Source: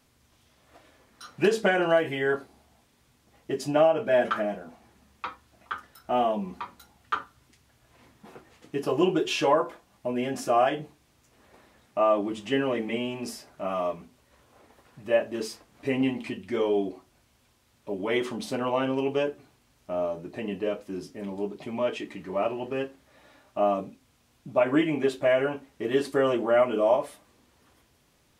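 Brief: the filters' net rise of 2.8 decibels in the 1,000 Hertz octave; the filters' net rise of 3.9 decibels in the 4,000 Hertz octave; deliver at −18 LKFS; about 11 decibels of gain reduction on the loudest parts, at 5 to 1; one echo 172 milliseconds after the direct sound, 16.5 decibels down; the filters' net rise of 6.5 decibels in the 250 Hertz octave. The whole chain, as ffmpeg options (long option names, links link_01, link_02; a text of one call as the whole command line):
ffmpeg -i in.wav -af "equalizer=frequency=250:width_type=o:gain=8,equalizer=frequency=1000:width_type=o:gain=3,equalizer=frequency=4000:width_type=o:gain=5.5,acompressor=threshold=-26dB:ratio=5,aecho=1:1:172:0.15,volume=13dB" out.wav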